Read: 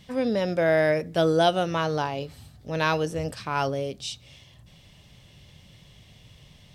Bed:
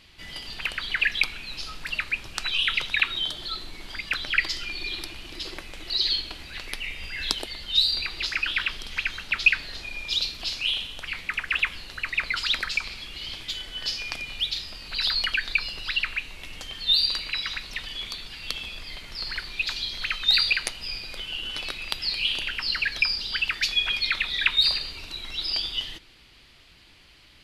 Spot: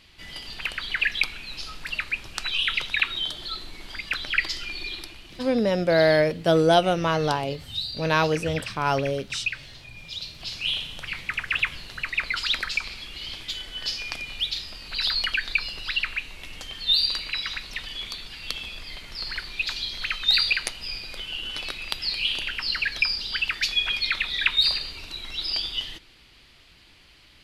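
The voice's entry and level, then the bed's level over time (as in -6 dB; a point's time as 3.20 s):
5.30 s, +2.5 dB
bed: 4.79 s -0.5 dB
5.61 s -9.5 dB
10.17 s -9.5 dB
10.73 s 0 dB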